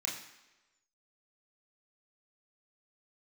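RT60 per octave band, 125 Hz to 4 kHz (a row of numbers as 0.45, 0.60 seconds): 0.80, 0.95, 1.1, 1.1, 1.1, 1.0 seconds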